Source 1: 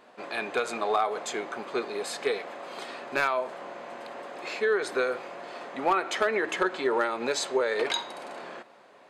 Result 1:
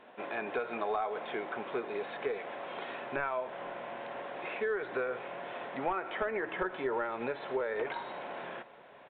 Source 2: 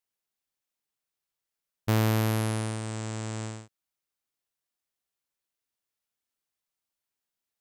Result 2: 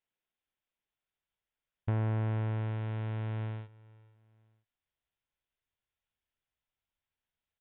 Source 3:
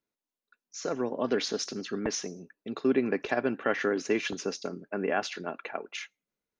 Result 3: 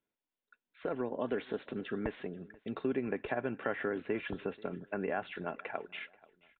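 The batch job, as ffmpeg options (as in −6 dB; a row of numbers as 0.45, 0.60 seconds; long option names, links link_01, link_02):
-filter_complex "[0:a]acrossover=split=3000[link_01][link_02];[link_02]acompressor=threshold=-51dB:ratio=4:attack=1:release=60[link_03];[link_01][link_03]amix=inputs=2:normalize=0,bandreject=frequency=1200:width=13,asubboost=boost=4:cutoff=120,acrossover=split=1800[link_04][link_05];[link_05]alimiter=level_in=11dB:limit=-24dB:level=0:latency=1:release=146,volume=-11dB[link_06];[link_04][link_06]amix=inputs=2:normalize=0,acompressor=threshold=-34dB:ratio=2,asplit=2[link_07][link_08];[link_08]aecho=0:1:484|968:0.0708|0.0255[link_09];[link_07][link_09]amix=inputs=2:normalize=0,aresample=8000,aresample=44100"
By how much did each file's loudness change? −7.5, −5.0, −6.5 LU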